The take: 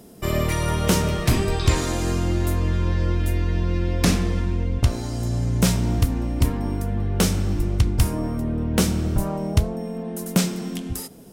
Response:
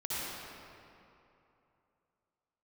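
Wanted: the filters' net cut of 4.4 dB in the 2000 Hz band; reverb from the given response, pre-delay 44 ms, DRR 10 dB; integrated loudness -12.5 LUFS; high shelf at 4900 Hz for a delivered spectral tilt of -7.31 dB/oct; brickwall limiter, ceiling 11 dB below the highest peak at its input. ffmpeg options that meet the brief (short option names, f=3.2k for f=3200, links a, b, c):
-filter_complex "[0:a]equalizer=f=2k:t=o:g=-5,highshelf=f=4.9k:g=-3.5,alimiter=limit=-18dB:level=0:latency=1,asplit=2[a][b];[1:a]atrim=start_sample=2205,adelay=44[c];[b][c]afir=irnorm=-1:irlink=0,volume=-15.5dB[d];[a][d]amix=inputs=2:normalize=0,volume=15dB"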